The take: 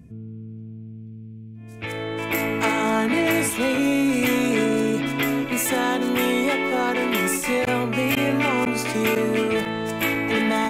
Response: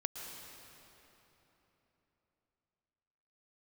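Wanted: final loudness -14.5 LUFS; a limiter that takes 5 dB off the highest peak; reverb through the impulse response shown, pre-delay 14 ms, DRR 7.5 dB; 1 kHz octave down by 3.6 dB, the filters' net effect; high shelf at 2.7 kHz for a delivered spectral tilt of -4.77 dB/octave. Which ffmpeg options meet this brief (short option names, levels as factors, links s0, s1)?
-filter_complex "[0:a]equalizer=f=1000:t=o:g=-4,highshelf=f=2700:g=-4.5,alimiter=limit=0.133:level=0:latency=1,asplit=2[s0][s1];[1:a]atrim=start_sample=2205,adelay=14[s2];[s1][s2]afir=irnorm=-1:irlink=0,volume=0.398[s3];[s0][s3]amix=inputs=2:normalize=0,volume=3.16"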